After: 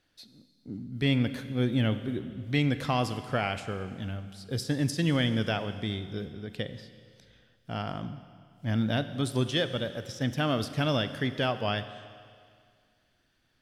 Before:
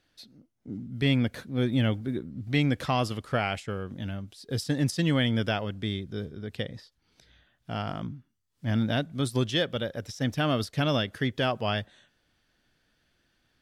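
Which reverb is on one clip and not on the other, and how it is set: Schroeder reverb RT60 2.1 s, combs from 32 ms, DRR 11 dB; trim -1.5 dB

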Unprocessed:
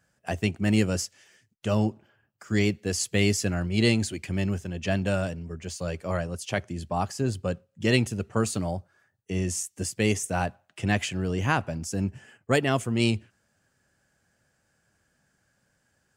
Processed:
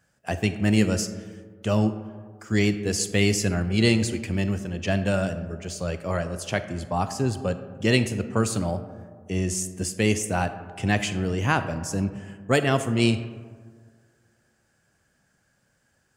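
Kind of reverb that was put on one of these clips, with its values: algorithmic reverb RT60 1.8 s, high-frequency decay 0.35×, pre-delay 0 ms, DRR 10.5 dB; trim +2 dB

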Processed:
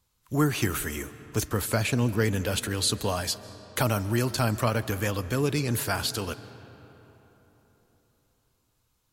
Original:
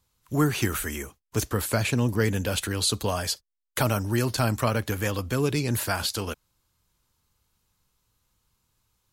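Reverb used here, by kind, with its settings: algorithmic reverb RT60 4 s, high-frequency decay 0.55×, pre-delay 105 ms, DRR 15.5 dB; trim -1 dB

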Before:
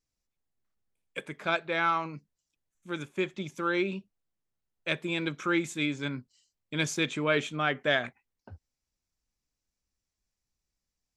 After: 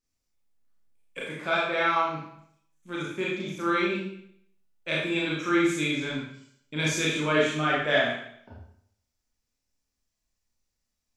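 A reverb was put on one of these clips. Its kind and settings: Schroeder reverb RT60 0.67 s, combs from 26 ms, DRR -5.5 dB; trim -2.5 dB

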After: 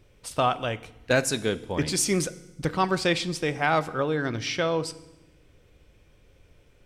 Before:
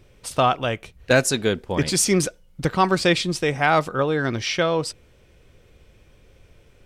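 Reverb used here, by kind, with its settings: FDN reverb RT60 0.96 s, low-frequency decay 1.45×, high-frequency decay 1×, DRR 14.5 dB; trim -5 dB

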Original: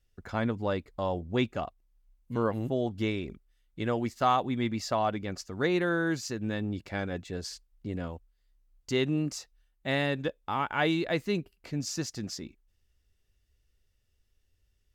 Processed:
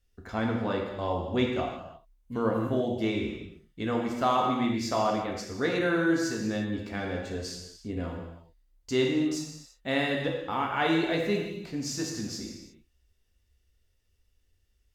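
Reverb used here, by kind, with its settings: gated-style reverb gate 380 ms falling, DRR -0.5 dB; trim -1.5 dB

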